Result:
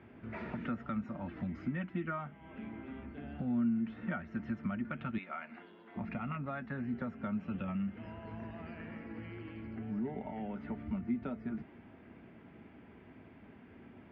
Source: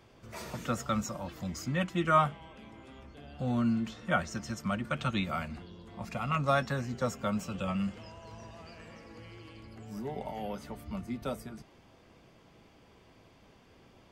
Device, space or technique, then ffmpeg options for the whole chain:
bass amplifier: -filter_complex "[0:a]asettb=1/sr,asplit=3[s0][s1][s2];[s0]atrim=end=5.184[s3];[s1]atrim=start=5.18:end=5.96,asetpts=PTS-STARTPTS,afade=t=in:d=0.004:c=qsin,afade=t=out:st=0.776:d=0.004:c=qsin,highpass=560[s4];[s2]atrim=start=5.956[s5];[s3][s4]acrossfade=d=0.004:c1=hsin:c2=qsin[s6];[s6][s5]acrossfade=d=0.004:c1=qsin:c2=hsin,acompressor=threshold=0.00891:ratio=4,highpass=78,equalizer=f=130:t=q:w=4:g=-5,equalizer=f=240:t=q:w=4:g=6,equalizer=f=520:t=q:w=4:g=-9,equalizer=f=760:t=q:w=4:g=-4,equalizer=f=1100:t=q:w=4:g=-9,lowpass=f=2200:w=0.5412,lowpass=f=2200:w=1.3066,volume=1.88"

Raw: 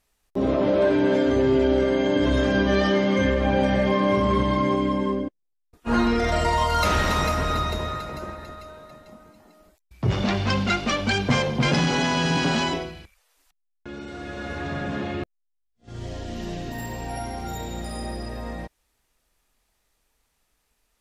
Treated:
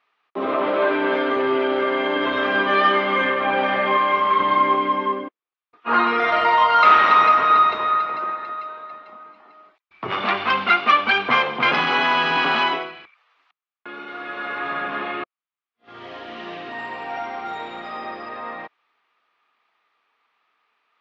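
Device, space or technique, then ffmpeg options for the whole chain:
phone earpiece: -filter_complex "[0:a]highpass=500,equalizer=f=560:t=q:w=4:g=-6,equalizer=f=1200:t=q:w=4:g=10,equalizer=f=2300:t=q:w=4:g=3,lowpass=f=3400:w=0.5412,lowpass=f=3400:w=1.3066,asettb=1/sr,asplit=3[s0][s1][s2];[s0]atrim=end=3.974[s3];[s1]atrim=start=3.97:end=4.4,asetpts=PTS-STARTPTS,afade=t=in:d=0.004:c=qsin,afade=t=out:st=0.426:d=0.004:c=qsin,equalizer=f=240:t=o:w=2.6:g=-6.5[s4];[s2]atrim=start=4.396[s5];[s3][s4]acrossfade=d=0.004:c1=hsin:c2=qsin[s6];[s6][s5]acrossfade=d=0.004:c1=qsin:c2=hsin,volume=1.88"

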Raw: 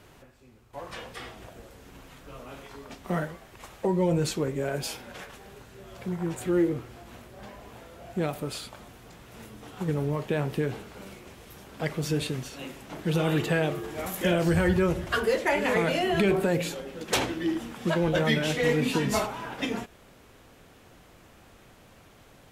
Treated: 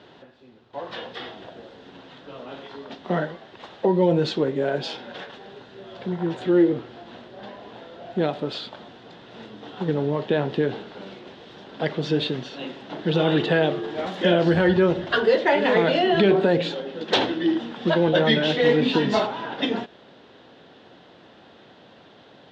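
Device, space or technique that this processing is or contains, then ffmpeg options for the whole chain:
kitchen radio: -af "highpass=200,equalizer=f=1200:t=q:w=4:g=-6,equalizer=f=2300:t=q:w=4:g=-9,equalizer=f=3600:t=q:w=4:g=5,lowpass=f=4100:w=0.5412,lowpass=f=4100:w=1.3066,volume=2.24"

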